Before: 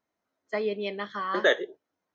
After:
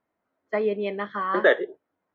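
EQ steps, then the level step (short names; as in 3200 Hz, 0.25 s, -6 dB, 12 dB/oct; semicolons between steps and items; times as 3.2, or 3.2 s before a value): LPF 2100 Hz 12 dB/oct; +4.5 dB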